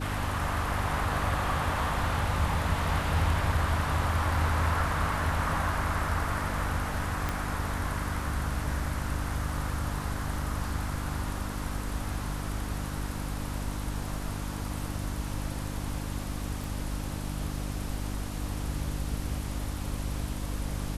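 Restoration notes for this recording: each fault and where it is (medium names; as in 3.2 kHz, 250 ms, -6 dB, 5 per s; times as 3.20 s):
hum 50 Hz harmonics 6 -35 dBFS
7.29 s: pop -15 dBFS
16.64 s: pop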